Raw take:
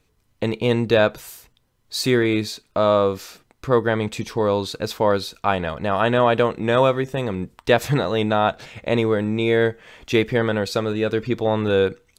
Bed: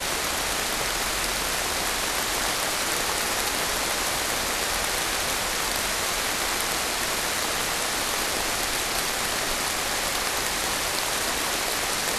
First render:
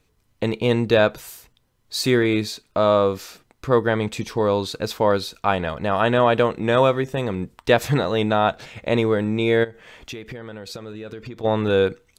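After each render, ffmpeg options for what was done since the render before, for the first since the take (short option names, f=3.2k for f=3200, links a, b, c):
-filter_complex "[0:a]asplit=3[a][b][c];[a]afade=t=out:st=9.63:d=0.02[d];[b]acompressor=threshold=-30dB:ratio=20:attack=3.2:release=140:knee=1:detection=peak,afade=t=in:st=9.63:d=0.02,afade=t=out:st=11.43:d=0.02[e];[c]afade=t=in:st=11.43:d=0.02[f];[d][e][f]amix=inputs=3:normalize=0"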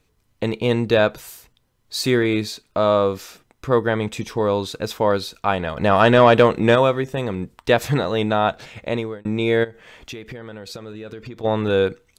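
-filter_complex "[0:a]asettb=1/sr,asplit=3[a][b][c];[a]atrim=end=3.214[d];[b]atrim=start=3.21:end=5.06,asetpts=PTS-STARTPTS,afade=t=in:d=0.004:c=qsin,afade=t=out:st=1.846:d=0.004:c=qsin,bandreject=f=4.4k:w=12[e];[c]atrim=start=5.056[f];[d][e]acrossfade=d=0.004:c1=hsin:c2=qsin[g];[g][f]acrossfade=d=0.004:c1=qsin:c2=hsin,asplit=3[h][i][j];[h]afade=t=out:st=5.76:d=0.02[k];[i]acontrast=56,afade=t=in:st=5.76:d=0.02,afade=t=out:st=6.74:d=0.02[l];[j]afade=t=in:st=6.74:d=0.02[m];[k][l][m]amix=inputs=3:normalize=0,asplit=2[n][o];[n]atrim=end=9.25,asetpts=PTS-STARTPTS,afade=t=out:st=8.79:d=0.46[p];[o]atrim=start=9.25,asetpts=PTS-STARTPTS,afade=t=in:d=0.004:c=hsin[q];[p][q]concat=n=2:v=0:a=1"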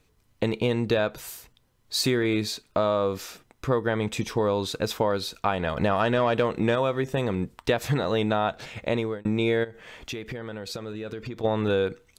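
-af "acompressor=threshold=-20dB:ratio=6"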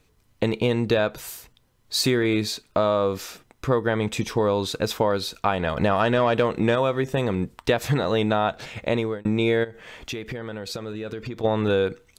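-af "volume=2.5dB"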